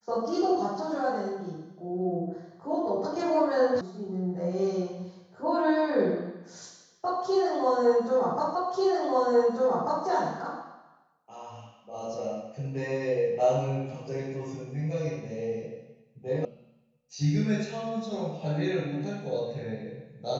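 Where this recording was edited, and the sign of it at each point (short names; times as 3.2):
3.81 sound cut off
8.55 repeat of the last 1.49 s
16.45 sound cut off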